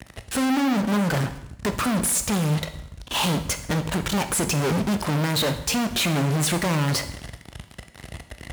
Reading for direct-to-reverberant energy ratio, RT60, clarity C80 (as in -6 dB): 8.5 dB, 0.80 s, 14.5 dB